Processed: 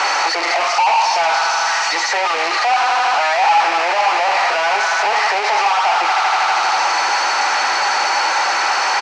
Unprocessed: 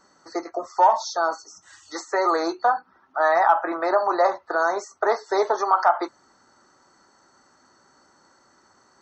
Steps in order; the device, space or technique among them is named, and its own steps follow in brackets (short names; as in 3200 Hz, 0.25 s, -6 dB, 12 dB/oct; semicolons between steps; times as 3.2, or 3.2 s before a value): tone controls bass -13 dB, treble -2 dB; doubler 12 ms -12 dB; thin delay 80 ms, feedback 69%, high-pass 1600 Hz, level -4 dB; home computer beeper (infinite clipping; speaker cabinet 730–5300 Hz, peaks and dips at 820 Hz +9 dB, 1200 Hz -3 dB, 2400 Hz +6 dB, 3500 Hz -7 dB); gain +8.5 dB